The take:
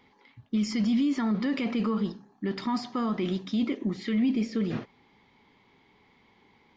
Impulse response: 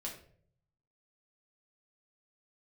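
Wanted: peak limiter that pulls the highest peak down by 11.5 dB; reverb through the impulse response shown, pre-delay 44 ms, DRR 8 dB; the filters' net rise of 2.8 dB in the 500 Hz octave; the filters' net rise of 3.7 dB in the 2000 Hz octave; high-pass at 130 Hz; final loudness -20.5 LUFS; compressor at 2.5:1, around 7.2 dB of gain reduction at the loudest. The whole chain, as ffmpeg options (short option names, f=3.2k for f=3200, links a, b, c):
-filter_complex "[0:a]highpass=130,equalizer=f=500:t=o:g=3.5,equalizer=f=2k:t=o:g=4,acompressor=threshold=-33dB:ratio=2.5,alimiter=level_in=8.5dB:limit=-24dB:level=0:latency=1,volume=-8.5dB,asplit=2[a][b];[1:a]atrim=start_sample=2205,adelay=44[c];[b][c]afir=irnorm=-1:irlink=0,volume=-7dB[d];[a][d]amix=inputs=2:normalize=0,volume=19.5dB"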